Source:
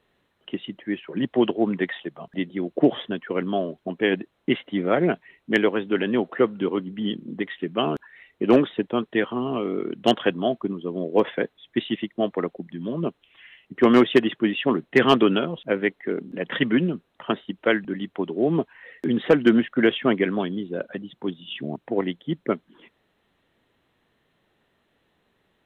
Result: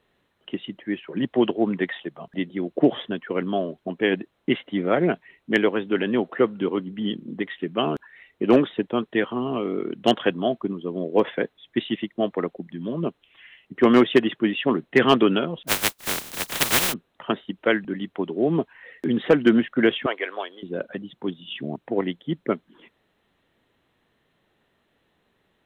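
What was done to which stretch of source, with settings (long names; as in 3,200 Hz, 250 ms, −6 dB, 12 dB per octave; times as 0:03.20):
0:15.67–0:16.92: compressing power law on the bin magnitudes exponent 0.12
0:20.06–0:20.63: high-pass filter 520 Hz 24 dB per octave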